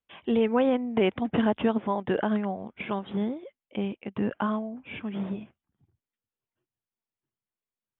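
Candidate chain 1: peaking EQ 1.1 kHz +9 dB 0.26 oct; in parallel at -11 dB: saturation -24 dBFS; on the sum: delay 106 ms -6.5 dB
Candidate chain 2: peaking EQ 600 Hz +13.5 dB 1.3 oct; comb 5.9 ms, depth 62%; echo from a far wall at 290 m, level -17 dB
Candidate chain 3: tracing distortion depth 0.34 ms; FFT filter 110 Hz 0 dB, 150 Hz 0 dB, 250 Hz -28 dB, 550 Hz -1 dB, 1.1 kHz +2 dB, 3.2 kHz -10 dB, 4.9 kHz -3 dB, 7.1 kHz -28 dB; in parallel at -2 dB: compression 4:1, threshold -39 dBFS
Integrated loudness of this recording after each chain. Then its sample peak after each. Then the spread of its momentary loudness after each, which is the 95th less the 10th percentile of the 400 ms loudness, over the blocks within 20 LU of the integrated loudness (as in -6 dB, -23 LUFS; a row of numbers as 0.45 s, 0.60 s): -26.0 LUFS, -19.5 LUFS, -32.5 LUFS; -10.0 dBFS, -2.0 dBFS, -13.5 dBFS; 11 LU, 16 LU, 12 LU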